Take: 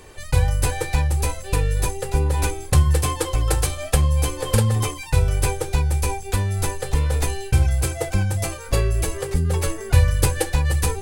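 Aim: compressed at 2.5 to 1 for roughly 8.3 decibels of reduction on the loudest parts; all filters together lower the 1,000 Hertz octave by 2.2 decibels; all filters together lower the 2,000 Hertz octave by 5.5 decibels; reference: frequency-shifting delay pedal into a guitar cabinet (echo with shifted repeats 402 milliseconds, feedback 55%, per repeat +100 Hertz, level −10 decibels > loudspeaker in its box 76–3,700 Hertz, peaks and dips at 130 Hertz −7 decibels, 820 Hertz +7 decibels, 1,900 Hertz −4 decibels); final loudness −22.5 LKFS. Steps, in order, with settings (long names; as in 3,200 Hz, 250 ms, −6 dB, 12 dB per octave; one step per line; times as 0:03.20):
parametric band 1,000 Hz −7.5 dB
parametric band 2,000 Hz −3 dB
downward compressor 2.5 to 1, threshold −23 dBFS
echo with shifted repeats 402 ms, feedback 55%, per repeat +100 Hz, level −10 dB
loudspeaker in its box 76–3,700 Hz, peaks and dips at 130 Hz −7 dB, 820 Hz +7 dB, 1,900 Hz −4 dB
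level +7 dB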